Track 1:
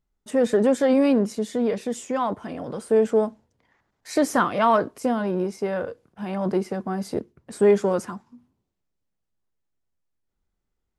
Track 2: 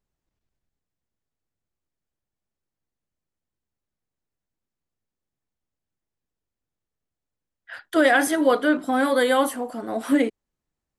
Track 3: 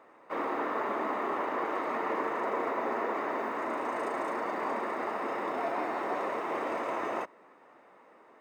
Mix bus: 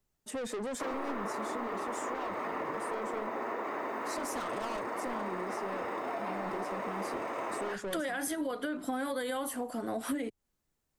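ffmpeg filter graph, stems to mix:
-filter_complex "[0:a]highpass=f=190:p=1,asoftclip=type=tanh:threshold=-25.5dB,volume=-5dB[a];[1:a]alimiter=limit=-15.5dB:level=0:latency=1:release=104,volume=1dB[b];[2:a]adelay=500,volume=1.5dB[c];[a][b][c]amix=inputs=3:normalize=0,highshelf=f=6.6k:g=6.5,acrossover=split=120[d][e];[e]acompressor=threshold=-33dB:ratio=6[f];[d][f]amix=inputs=2:normalize=0"

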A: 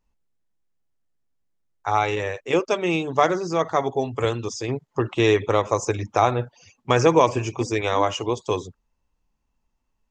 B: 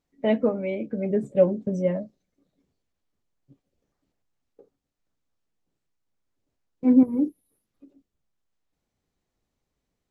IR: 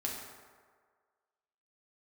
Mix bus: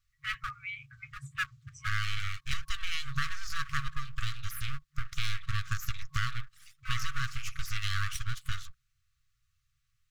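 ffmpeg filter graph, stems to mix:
-filter_complex "[0:a]equalizer=f=100:t=o:w=0.67:g=7,equalizer=f=400:t=o:w=0.67:g=7,equalizer=f=4k:t=o:w=0.67:g=7,aeval=exprs='abs(val(0))':c=same,volume=-4.5dB[a];[1:a]volume=18.5dB,asoftclip=hard,volume=-18.5dB,volume=2.5dB[b];[a][b]amix=inputs=2:normalize=0,afftfilt=real='re*(1-between(b*sr/4096,140,1100))':imag='im*(1-between(b*sr/4096,140,1100))':win_size=4096:overlap=0.75,acompressor=threshold=-25dB:ratio=5"

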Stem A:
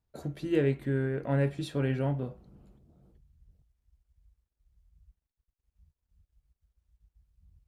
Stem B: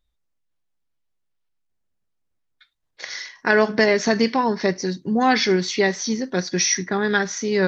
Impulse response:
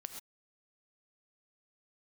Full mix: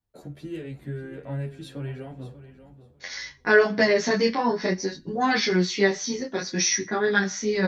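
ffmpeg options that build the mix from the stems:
-filter_complex "[0:a]acrossover=split=140|3000[a][b][c];[b]acompressor=threshold=-31dB:ratio=6[d];[a][d][c]amix=inputs=3:normalize=0,volume=0.5dB,asplit=2[e][f];[f]volume=-13.5dB[g];[1:a]agate=range=-33dB:threshold=-33dB:ratio=3:detection=peak,flanger=delay=18.5:depth=7.4:speed=0.58,volume=2.5dB,asplit=2[h][i];[i]volume=-18.5dB[j];[2:a]atrim=start_sample=2205[k];[j][k]afir=irnorm=-1:irlink=0[l];[g]aecho=0:1:589|1178|1767:1|0.16|0.0256[m];[e][h][l][m]amix=inputs=4:normalize=0,asplit=2[n][o];[o]adelay=9.7,afreqshift=2[p];[n][p]amix=inputs=2:normalize=1"

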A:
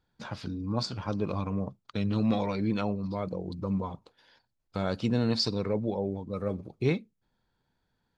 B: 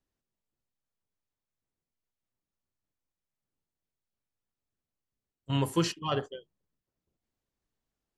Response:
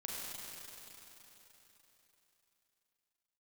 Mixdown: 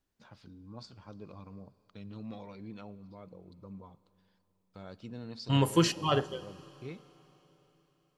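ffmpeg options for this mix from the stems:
-filter_complex "[0:a]volume=-17.5dB,asplit=2[a][b];[b]volume=-18dB[c];[1:a]volume=2dB,asplit=2[d][e];[e]volume=-18dB[f];[2:a]atrim=start_sample=2205[g];[c][f]amix=inputs=2:normalize=0[h];[h][g]afir=irnorm=-1:irlink=0[i];[a][d][i]amix=inputs=3:normalize=0"

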